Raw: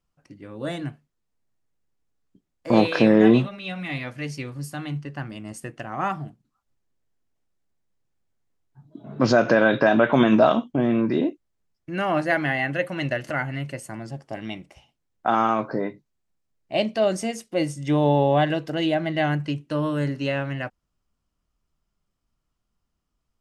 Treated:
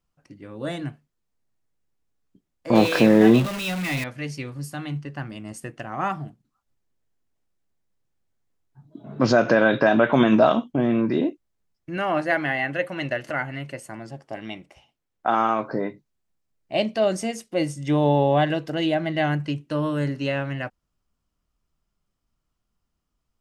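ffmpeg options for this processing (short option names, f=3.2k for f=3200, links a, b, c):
-filter_complex "[0:a]asettb=1/sr,asplit=3[a][b][c];[a]atrim=end=2.754[d];[b]atrim=start=2.75:end=4.04,asetpts=PTS-STARTPTS,afade=t=in:d=0.004:c=qsin,afade=t=out:st=1.286:d=0.004:c=qsin,aeval=exprs='val(0)+0.5*0.0447*sgn(val(0))':c=same[e];[c]atrim=start=4.036[f];[d][e]acrossfade=d=0.004:c1=hsin:c2=qsin[g];[g][f]acrossfade=d=0.004:c1=qsin:c2=hsin,asettb=1/sr,asplit=3[h][i][j];[h]atrim=end=11.974[k];[i]atrim=start=11.97:end=15.66,asetpts=PTS-STARTPTS,afade=t=in:d=0.004:c=qsin,afade=t=out:st=3.686:d=0.004:c=qsin,bass=f=250:g=-5,treble=f=4k:g=-3[l];[j]atrim=start=15.656[m];[k][l]acrossfade=d=0.004:c1=hsin:c2=qsin[n];[n][m]acrossfade=d=0.004:c1=qsin:c2=hsin"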